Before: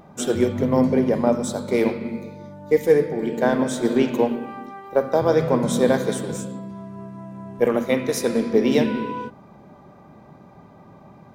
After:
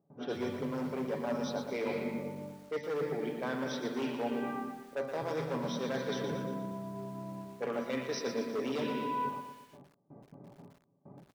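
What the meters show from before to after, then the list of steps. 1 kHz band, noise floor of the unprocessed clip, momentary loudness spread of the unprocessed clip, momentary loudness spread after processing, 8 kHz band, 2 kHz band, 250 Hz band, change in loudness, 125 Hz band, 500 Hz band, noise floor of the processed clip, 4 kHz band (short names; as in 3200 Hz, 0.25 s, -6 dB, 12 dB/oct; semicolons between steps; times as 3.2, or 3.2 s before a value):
-9.5 dB, -48 dBFS, 18 LU, 9 LU, -16.5 dB, -10.5 dB, -14.5 dB, -15.0 dB, -14.0 dB, -15.0 dB, -67 dBFS, -9.0 dB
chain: brick-wall FIR low-pass 6100 Hz; comb 7.1 ms, depth 45%; gate with hold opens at -36 dBFS; overloaded stage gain 14 dB; low shelf 410 Hz -6.5 dB; low-pass opened by the level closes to 440 Hz, open at -20.5 dBFS; HPF 100 Hz 24 dB/oct; reverse; compressor 6:1, threshold -33 dBFS, peak gain reduction 15.5 dB; reverse; lo-fi delay 0.118 s, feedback 55%, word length 9-bit, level -8 dB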